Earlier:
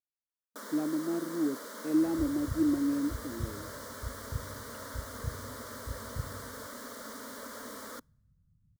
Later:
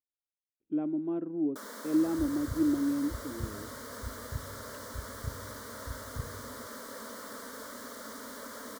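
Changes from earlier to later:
first sound: entry +1.00 s; second sound: send off

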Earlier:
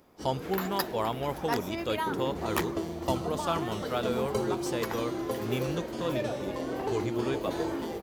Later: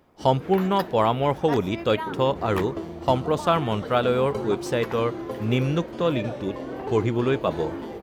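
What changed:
speech +10.0 dB; master: add tone controls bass +1 dB, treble -10 dB

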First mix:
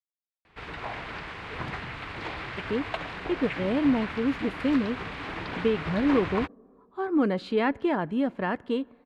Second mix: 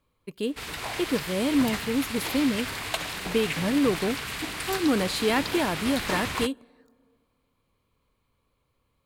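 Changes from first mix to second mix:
speech: entry -2.30 s; master: remove low-pass 2.1 kHz 12 dB/octave

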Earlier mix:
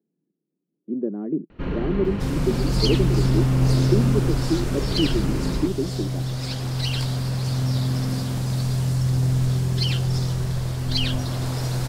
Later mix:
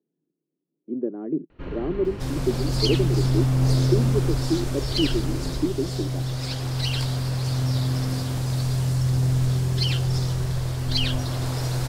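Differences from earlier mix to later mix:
first sound -6.0 dB; master: add peaking EQ 200 Hz -12.5 dB 0.27 oct

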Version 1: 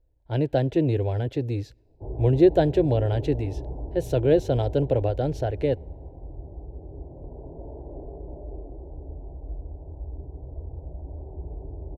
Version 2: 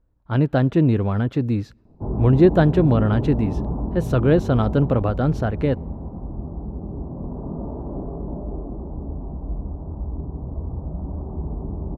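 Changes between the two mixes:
background +5.5 dB; master: remove static phaser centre 500 Hz, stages 4

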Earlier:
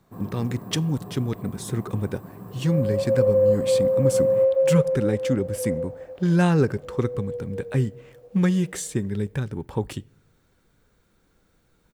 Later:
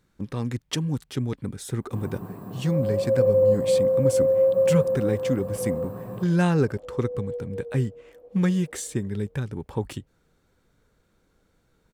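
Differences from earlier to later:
speech: send off; first sound: entry +1.80 s; second sound: add low-pass 1 kHz 12 dB/octave

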